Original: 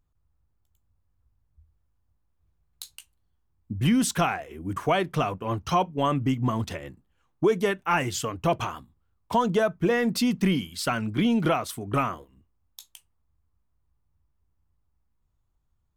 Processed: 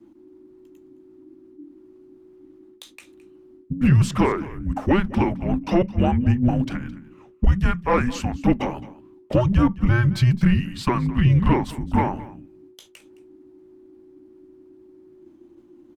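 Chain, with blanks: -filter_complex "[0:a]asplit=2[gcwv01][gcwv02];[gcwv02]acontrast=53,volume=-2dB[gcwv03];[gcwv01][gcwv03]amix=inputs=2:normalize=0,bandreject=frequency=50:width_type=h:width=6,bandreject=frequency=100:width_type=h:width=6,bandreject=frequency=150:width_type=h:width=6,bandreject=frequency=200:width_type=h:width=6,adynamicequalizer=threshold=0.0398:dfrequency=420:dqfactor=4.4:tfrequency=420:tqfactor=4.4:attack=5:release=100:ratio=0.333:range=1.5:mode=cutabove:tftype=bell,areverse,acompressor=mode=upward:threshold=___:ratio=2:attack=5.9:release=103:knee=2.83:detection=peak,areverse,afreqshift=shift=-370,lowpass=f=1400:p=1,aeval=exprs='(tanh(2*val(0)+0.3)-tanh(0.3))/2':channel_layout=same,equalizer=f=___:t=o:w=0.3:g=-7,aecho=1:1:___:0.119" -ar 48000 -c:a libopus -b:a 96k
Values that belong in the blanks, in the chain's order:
-29dB, 680, 215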